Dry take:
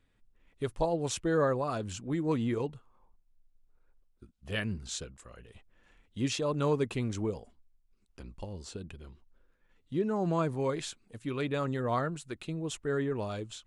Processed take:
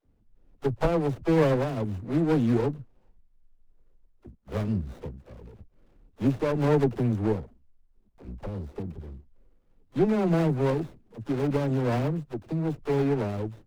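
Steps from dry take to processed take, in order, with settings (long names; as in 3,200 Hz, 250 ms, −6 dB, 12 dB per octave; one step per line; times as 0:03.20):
running median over 41 samples
0:07.38–0:08.23: downward compressor 3 to 1, threshold −52 dBFS, peak gain reduction 7.5 dB
all-pass dispersion lows, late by 56 ms, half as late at 340 Hz
windowed peak hold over 17 samples
level +8 dB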